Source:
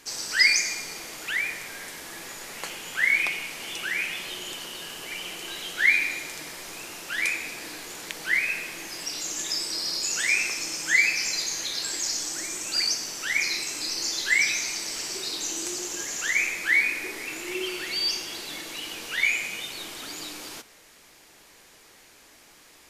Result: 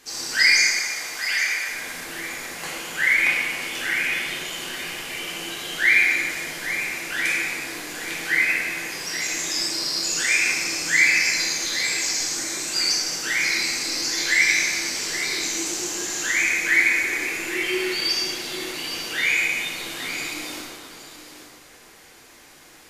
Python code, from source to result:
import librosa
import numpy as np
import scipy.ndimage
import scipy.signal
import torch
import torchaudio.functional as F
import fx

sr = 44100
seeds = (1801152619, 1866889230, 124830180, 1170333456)

y = fx.highpass(x, sr, hz=660.0, slope=12, at=(0.62, 1.69))
y = y + 10.0 ** (-10.5 / 20.0) * np.pad(y, (int(822 * sr / 1000.0), 0))[:len(y)]
y = fx.rev_plate(y, sr, seeds[0], rt60_s=2.0, hf_ratio=0.6, predelay_ms=0, drr_db=-6.0)
y = y * librosa.db_to_amplitude(-2.0)